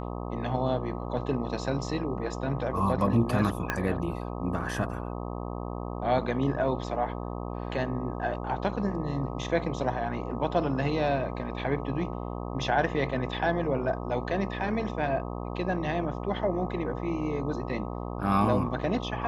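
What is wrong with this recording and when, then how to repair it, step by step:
mains buzz 60 Hz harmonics 21 −35 dBFS
0:03.70: click −13 dBFS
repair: click removal
hum removal 60 Hz, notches 21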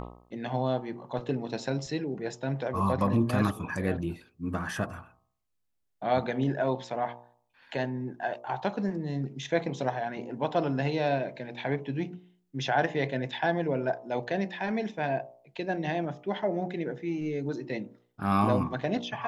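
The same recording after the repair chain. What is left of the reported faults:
0:03.70: click

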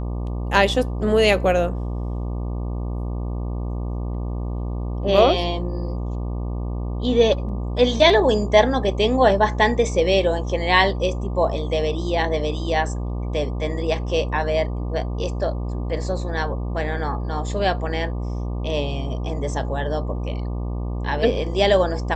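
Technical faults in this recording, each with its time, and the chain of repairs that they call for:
mains buzz 60 Hz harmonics 20 −26 dBFS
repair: hum removal 60 Hz, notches 20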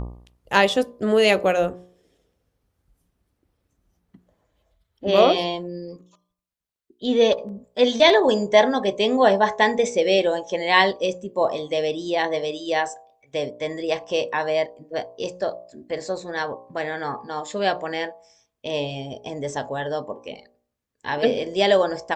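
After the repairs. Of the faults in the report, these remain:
none of them is left

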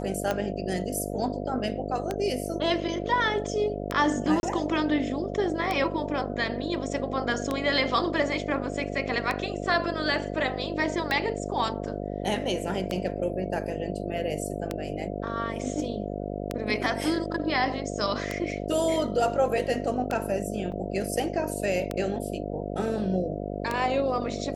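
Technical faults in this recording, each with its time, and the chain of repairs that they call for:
mains buzz 50 Hz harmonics 14 −33 dBFS
scratch tick 33 1/3 rpm −13 dBFS
0:04.40–0:04.43: drop-out 31 ms
0:20.72: drop-out 4.3 ms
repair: click removal
hum removal 50 Hz, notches 14
repair the gap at 0:04.40, 31 ms
repair the gap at 0:20.72, 4.3 ms

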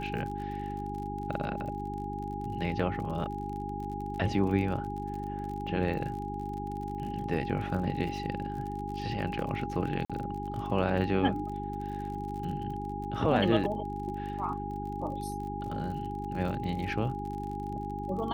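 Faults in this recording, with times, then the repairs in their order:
surface crackle 41 per second −38 dBFS
mains hum 50 Hz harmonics 8 −38 dBFS
whistle 820 Hz −37 dBFS
0:10.05–0:10.10: drop-out 46 ms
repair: click removal
hum removal 50 Hz, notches 8
notch filter 820 Hz, Q 30
repair the gap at 0:10.05, 46 ms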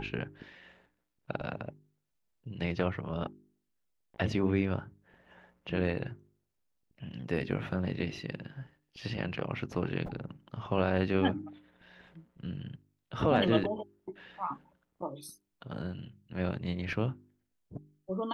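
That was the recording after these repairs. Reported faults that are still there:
none of them is left

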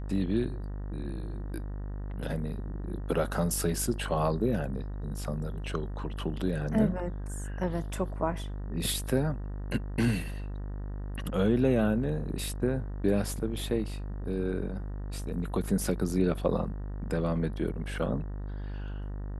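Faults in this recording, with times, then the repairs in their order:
mains buzz 50 Hz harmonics 38 −36 dBFS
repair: hum removal 50 Hz, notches 38

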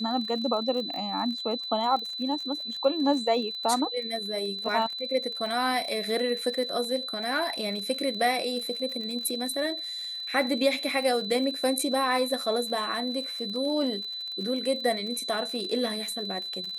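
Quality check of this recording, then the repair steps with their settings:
surface crackle 42 per second −34 dBFS
whistle 4,000 Hz −33 dBFS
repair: click removal
notch filter 4,000 Hz, Q 30

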